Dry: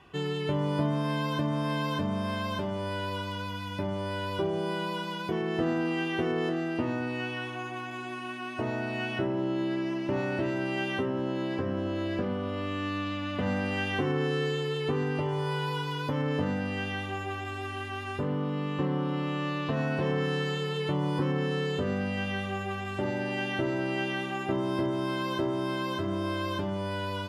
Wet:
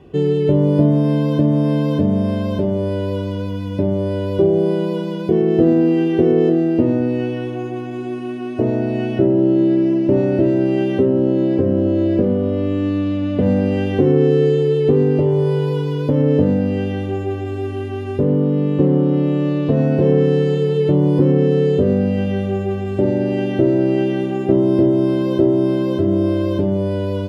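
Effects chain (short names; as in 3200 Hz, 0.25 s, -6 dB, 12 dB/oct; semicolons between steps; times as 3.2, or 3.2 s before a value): resonant low shelf 720 Hz +13.5 dB, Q 1.5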